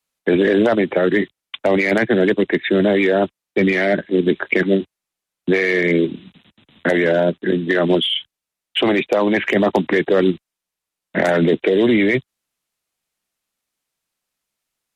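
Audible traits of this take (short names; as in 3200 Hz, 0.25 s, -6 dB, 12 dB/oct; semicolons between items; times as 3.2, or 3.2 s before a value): noise floor -85 dBFS; spectral tilt -4.0 dB/oct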